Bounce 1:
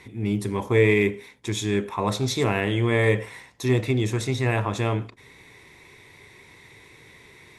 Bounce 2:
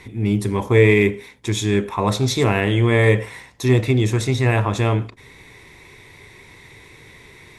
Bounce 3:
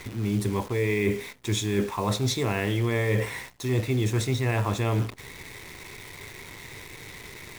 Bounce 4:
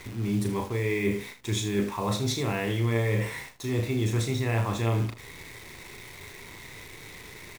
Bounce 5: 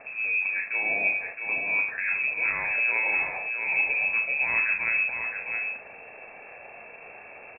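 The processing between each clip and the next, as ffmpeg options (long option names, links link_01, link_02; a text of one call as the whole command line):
ffmpeg -i in.wav -af "lowshelf=frequency=64:gain=9.5,volume=4.5dB" out.wav
ffmpeg -i in.wav -af "areverse,acompressor=threshold=-23dB:ratio=12,areverse,acrusher=bits=8:dc=4:mix=0:aa=0.000001,volume=1.5dB" out.wav
ffmpeg -i in.wav -af "aecho=1:1:35|78:0.473|0.251,volume=-3dB" out.wav
ffmpeg -i in.wav -af "lowpass=frequency=2300:width_type=q:width=0.5098,lowpass=frequency=2300:width_type=q:width=0.6013,lowpass=frequency=2300:width_type=q:width=0.9,lowpass=frequency=2300:width_type=q:width=2.563,afreqshift=-2700,aecho=1:1:666:0.501" out.wav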